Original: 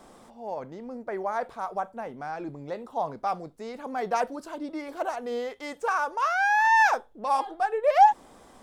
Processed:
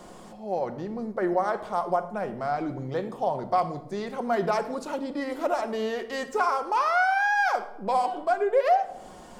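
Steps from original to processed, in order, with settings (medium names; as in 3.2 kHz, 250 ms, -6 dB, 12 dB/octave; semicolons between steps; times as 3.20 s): compression 6:1, threshold -26 dBFS, peak gain reduction 13.5 dB; simulated room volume 2800 m³, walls furnished, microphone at 1.2 m; speed mistake 48 kHz file played as 44.1 kHz; trim +5 dB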